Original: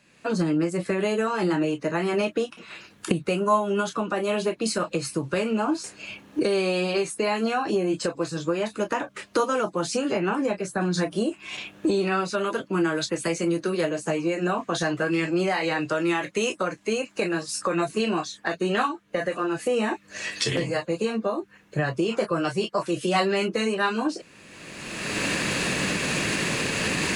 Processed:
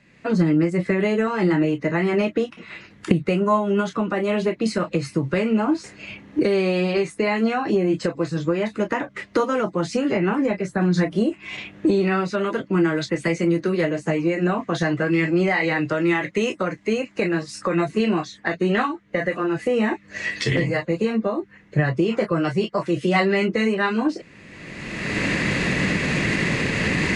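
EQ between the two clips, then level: air absorption 71 m; low shelf 310 Hz +9.5 dB; bell 2000 Hz +11.5 dB 0.24 oct; 0.0 dB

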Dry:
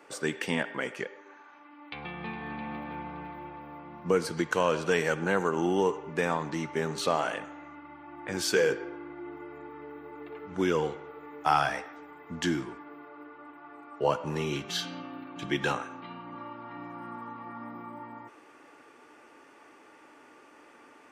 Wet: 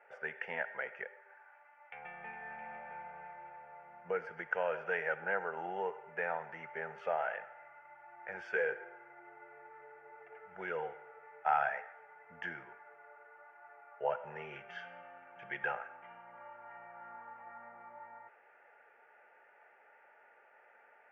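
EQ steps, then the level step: band-pass 1200 Hz, Q 1.1; air absorption 250 m; fixed phaser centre 1100 Hz, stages 6; +1.0 dB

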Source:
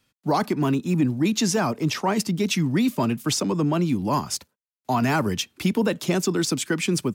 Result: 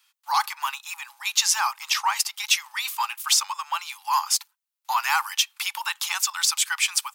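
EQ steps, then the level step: rippled Chebyshev high-pass 820 Hz, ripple 3 dB; high shelf 8400 Hz +8 dB; +5.5 dB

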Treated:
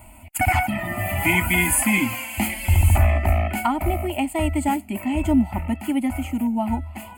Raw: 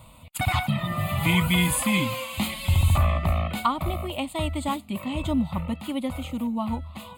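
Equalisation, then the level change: fixed phaser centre 760 Hz, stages 8; +8.0 dB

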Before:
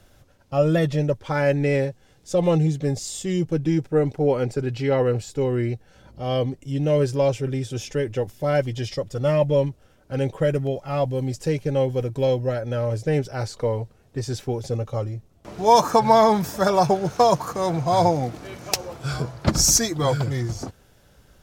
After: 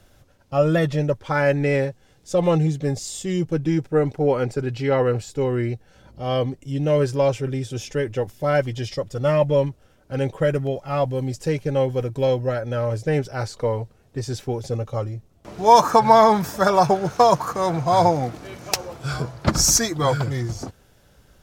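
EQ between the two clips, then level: dynamic EQ 1300 Hz, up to +5 dB, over -35 dBFS, Q 1; 0.0 dB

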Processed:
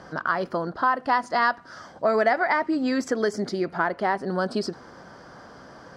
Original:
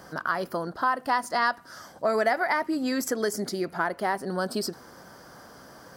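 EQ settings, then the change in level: air absorption 120 m; +3.5 dB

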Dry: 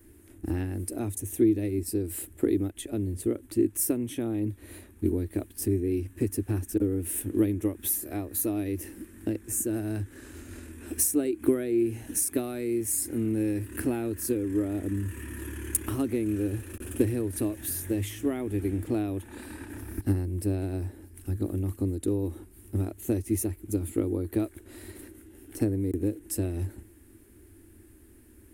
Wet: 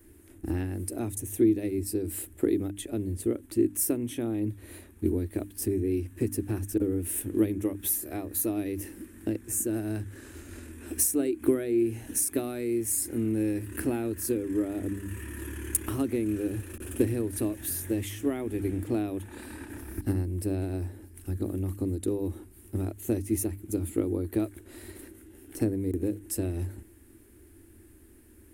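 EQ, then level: notches 50/100/150/200/250/300 Hz; 0.0 dB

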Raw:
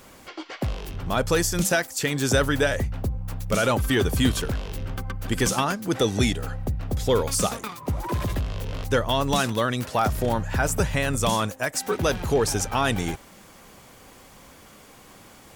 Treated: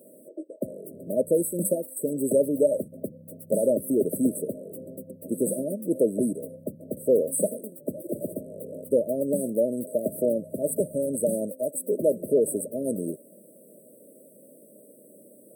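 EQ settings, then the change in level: HPF 200 Hz 24 dB/oct; brick-wall FIR band-stop 640–7900 Hz; bell 690 Hz +11 dB 0.42 oct; 0.0 dB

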